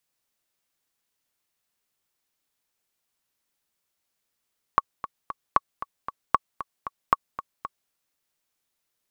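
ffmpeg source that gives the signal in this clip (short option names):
-f lavfi -i "aevalsrc='pow(10,(-4-14*gte(mod(t,3*60/230),60/230))/20)*sin(2*PI*1120*mod(t,60/230))*exp(-6.91*mod(t,60/230)/0.03)':d=3.13:s=44100"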